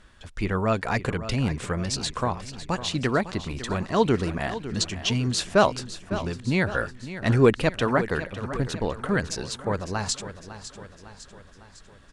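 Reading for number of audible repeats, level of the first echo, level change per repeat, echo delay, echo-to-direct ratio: 5, −13.0 dB, −5.5 dB, 554 ms, −11.5 dB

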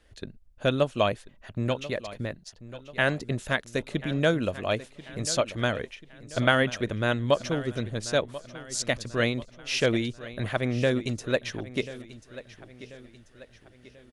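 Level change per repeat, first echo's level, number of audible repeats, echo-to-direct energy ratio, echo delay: −7.0 dB, −16.0 dB, 3, −15.0 dB, 1,038 ms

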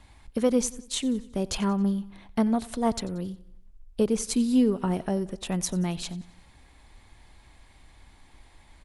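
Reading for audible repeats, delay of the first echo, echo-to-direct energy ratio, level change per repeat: 3, 91 ms, −19.0 dB, −6.0 dB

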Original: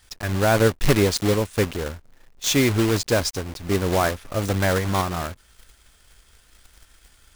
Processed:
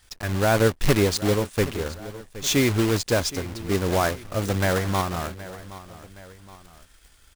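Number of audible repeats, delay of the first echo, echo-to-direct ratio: 2, 770 ms, −15.5 dB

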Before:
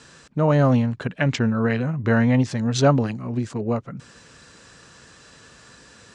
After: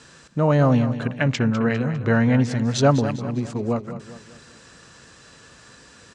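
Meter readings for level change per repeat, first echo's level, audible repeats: −7.0 dB, −12.0 dB, 4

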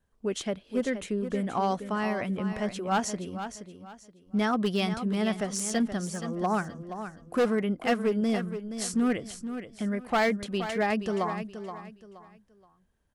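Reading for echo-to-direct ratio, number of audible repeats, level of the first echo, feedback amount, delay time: −9.5 dB, 3, −10.0 dB, 29%, 474 ms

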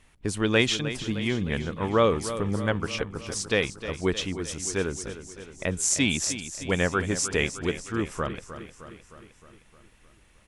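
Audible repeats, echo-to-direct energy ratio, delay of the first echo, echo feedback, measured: 6, −10.0 dB, 308 ms, 60%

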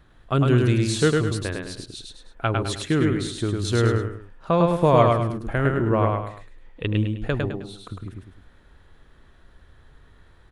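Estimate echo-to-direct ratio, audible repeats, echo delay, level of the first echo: −2.5 dB, 3, 104 ms, −3.0 dB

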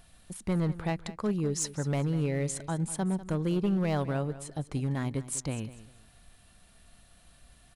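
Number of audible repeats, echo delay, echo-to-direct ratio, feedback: 2, 197 ms, −15.0 dB, 26%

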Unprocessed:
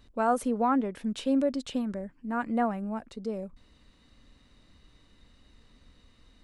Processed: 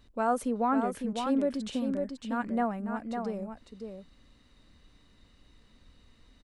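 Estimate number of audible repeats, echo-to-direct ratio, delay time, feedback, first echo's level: 1, −6.0 dB, 553 ms, repeats not evenly spaced, −6.0 dB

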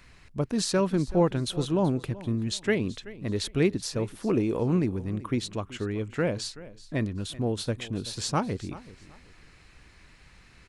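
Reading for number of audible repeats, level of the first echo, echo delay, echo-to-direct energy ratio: 2, −18.0 dB, 380 ms, −17.5 dB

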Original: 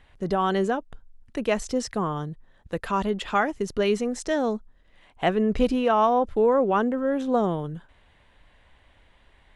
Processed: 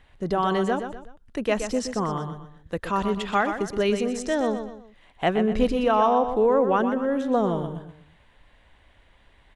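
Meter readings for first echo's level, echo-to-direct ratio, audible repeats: −8.5 dB, −8.0 dB, 3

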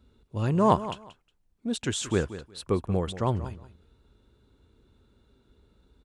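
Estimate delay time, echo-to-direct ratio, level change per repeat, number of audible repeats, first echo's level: 181 ms, −14.0 dB, −14.5 dB, 2, −14.0 dB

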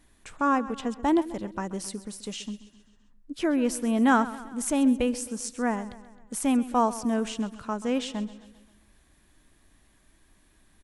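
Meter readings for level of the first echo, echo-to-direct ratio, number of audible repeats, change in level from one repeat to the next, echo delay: −16.5 dB, −15.0 dB, 4, −5.5 dB, 132 ms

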